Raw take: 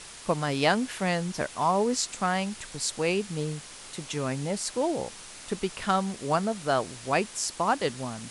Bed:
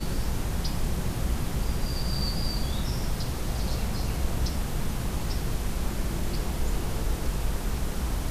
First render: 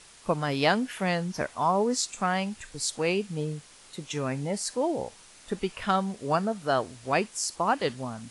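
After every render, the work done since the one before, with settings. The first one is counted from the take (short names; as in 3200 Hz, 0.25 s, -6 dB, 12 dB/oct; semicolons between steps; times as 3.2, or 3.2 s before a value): noise print and reduce 8 dB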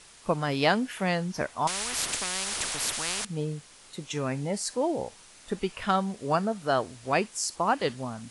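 1.67–3.25 spectral compressor 10:1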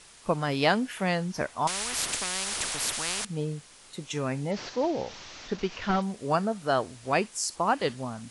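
4.51–6.02 delta modulation 32 kbps, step -37 dBFS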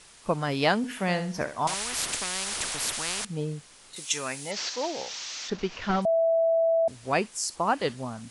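0.77–1.75 flutter echo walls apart 11.5 m, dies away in 0.38 s; 3.96–5.5 tilt +4.5 dB/oct; 6.05–6.88 bleep 659 Hz -19.5 dBFS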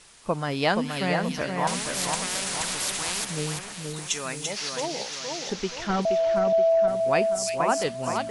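split-band echo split 2300 Hz, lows 0.475 s, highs 0.34 s, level -4.5 dB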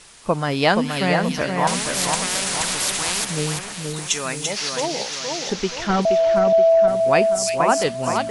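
gain +6 dB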